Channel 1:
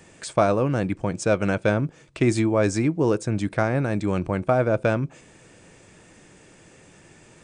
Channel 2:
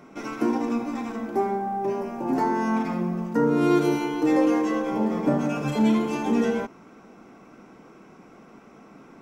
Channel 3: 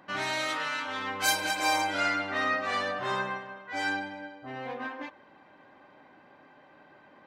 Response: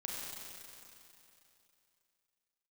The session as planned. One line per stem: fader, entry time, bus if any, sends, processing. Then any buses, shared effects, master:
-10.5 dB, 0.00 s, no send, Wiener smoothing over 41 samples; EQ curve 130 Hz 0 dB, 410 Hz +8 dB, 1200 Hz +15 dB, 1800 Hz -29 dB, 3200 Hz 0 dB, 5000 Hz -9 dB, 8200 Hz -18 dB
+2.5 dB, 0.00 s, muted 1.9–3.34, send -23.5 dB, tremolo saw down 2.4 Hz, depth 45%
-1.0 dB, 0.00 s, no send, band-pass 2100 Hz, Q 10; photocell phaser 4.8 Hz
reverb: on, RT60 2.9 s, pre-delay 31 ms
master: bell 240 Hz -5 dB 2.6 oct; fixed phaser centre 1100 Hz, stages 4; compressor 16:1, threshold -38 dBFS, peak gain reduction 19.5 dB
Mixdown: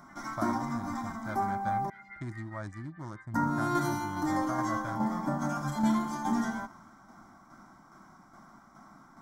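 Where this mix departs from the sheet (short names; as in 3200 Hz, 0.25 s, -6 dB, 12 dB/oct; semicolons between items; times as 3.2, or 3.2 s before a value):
stem 1: missing EQ curve 130 Hz 0 dB, 410 Hz +8 dB, 1200 Hz +15 dB, 1800 Hz -29 dB, 3200 Hz 0 dB, 5000 Hz -9 dB, 8200 Hz -18 dB; master: missing compressor 16:1, threshold -38 dBFS, peak gain reduction 19.5 dB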